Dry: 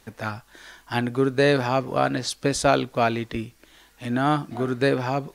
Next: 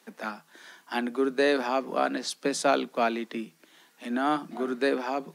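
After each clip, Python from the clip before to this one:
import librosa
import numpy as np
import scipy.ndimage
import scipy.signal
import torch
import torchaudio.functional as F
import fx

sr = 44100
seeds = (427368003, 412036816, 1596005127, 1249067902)

y = scipy.signal.sosfilt(scipy.signal.cheby1(10, 1.0, 160.0, 'highpass', fs=sr, output='sos'), x)
y = F.gain(torch.from_numpy(y), -3.5).numpy()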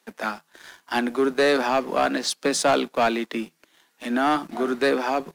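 y = fx.low_shelf(x, sr, hz=260.0, db=-4.5)
y = fx.leveller(y, sr, passes=2)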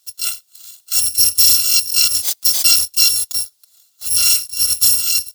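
y = fx.bit_reversed(x, sr, seeds[0], block=256)
y = fx.high_shelf_res(y, sr, hz=3000.0, db=10.5, q=1.5)
y = F.gain(torch.from_numpy(y), -3.0).numpy()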